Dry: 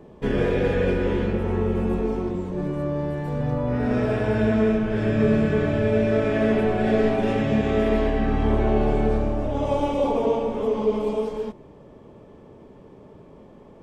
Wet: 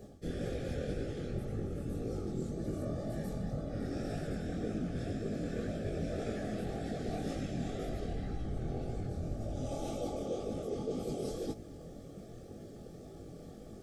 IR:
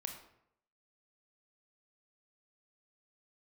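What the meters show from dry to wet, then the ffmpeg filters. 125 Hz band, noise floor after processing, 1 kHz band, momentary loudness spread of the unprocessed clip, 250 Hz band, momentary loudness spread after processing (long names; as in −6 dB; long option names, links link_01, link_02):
−12.0 dB, −50 dBFS, −18.0 dB, 6 LU, −15.0 dB, 12 LU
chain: -af "lowshelf=frequency=190:gain=9,bandreject=frequency=50:width_type=h:width=6,bandreject=frequency=100:width_type=h:width=6,bandreject=frequency=150:width_type=h:width=6,bandreject=frequency=200:width_type=h:width=6,bandreject=frequency=250:width_type=h:width=6,areverse,acompressor=threshold=-29dB:ratio=10,areverse,afftfilt=real='hypot(re,im)*cos(2*PI*random(0))':imag='hypot(re,im)*sin(2*PI*random(1))':win_size=512:overlap=0.75,flanger=delay=18:depth=6.8:speed=1.9,aexciter=amount=5.6:drive=6.4:freq=3900,asuperstop=centerf=980:order=20:qfactor=3.7,volume=4dB"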